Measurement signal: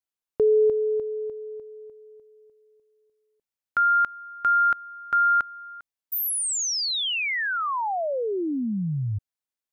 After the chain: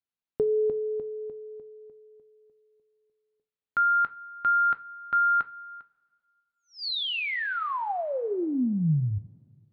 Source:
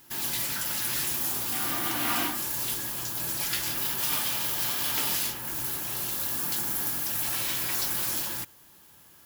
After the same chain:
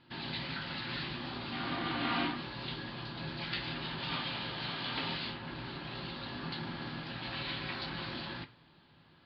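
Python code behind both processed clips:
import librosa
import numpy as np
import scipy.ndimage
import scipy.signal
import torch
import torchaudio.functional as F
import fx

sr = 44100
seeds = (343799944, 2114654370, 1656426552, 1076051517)

y = scipy.signal.sosfilt(scipy.signal.butter(16, 4600.0, 'lowpass', fs=sr, output='sos'), x)
y = fx.peak_eq(y, sr, hz=170.0, db=7.5, octaves=1.2)
y = fx.rev_double_slope(y, sr, seeds[0], early_s=0.27, late_s=2.0, knee_db=-21, drr_db=9.5)
y = y * 10.0 ** (-4.0 / 20.0)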